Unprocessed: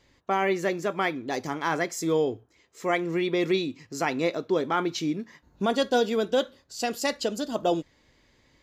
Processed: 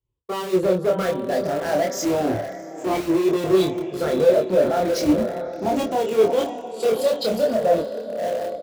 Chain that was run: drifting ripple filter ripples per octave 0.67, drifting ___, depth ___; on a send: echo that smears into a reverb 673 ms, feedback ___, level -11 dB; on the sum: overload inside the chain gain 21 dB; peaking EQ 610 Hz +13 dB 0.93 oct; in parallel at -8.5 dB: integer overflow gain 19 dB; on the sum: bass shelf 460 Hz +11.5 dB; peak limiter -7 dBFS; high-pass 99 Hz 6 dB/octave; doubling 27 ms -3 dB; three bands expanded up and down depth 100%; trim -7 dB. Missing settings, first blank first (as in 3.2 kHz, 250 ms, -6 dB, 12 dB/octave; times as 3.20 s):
+0.32 Hz, 17 dB, 48%